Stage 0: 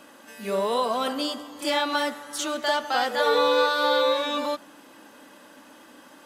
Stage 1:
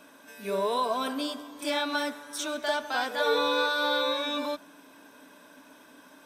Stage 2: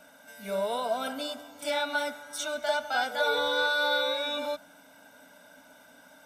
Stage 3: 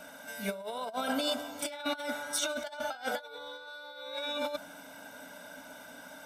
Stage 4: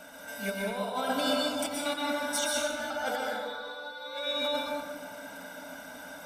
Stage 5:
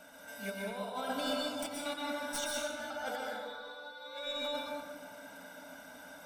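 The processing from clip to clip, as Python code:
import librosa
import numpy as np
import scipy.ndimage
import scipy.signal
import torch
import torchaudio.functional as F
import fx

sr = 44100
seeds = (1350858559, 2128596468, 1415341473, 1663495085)

y1 = fx.ripple_eq(x, sr, per_octave=1.6, db=8)
y1 = F.gain(torch.from_numpy(y1), -4.5).numpy()
y2 = y1 + 1.0 * np.pad(y1, (int(1.4 * sr / 1000.0), 0))[:len(y1)]
y2 = F.gain(torch.from_numpy(y2), -3.5).numpy()
y3 = fx.over_compress(y2, sr, threshold_db=-35.0, ratio=-0.5)
y4 = fx.rev_plate(y3, sr, seeds[0], rt60_s=1.6, hf_ratio=0.5, predelay_ms=105, drr_db=-2.5)
y5 = fx.tracing_dist(y4, sr, depth_ms=0.024)
y5 = F.gain(torch.from_numpy(y5), -6.5).numpy()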